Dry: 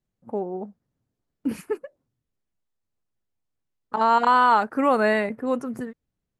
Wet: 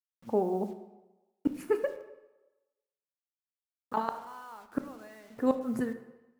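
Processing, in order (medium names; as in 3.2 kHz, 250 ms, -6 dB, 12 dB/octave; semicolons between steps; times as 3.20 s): 1.78–4.09 s: compressor with a negative ratio -31 dBFS, ratio -1; inverted gate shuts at -16 dBFS, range -30 dB; bit crusher 10-bit; reverberation RT60 1.1 s, pre-delay 17 ms, DRR 8.5 dB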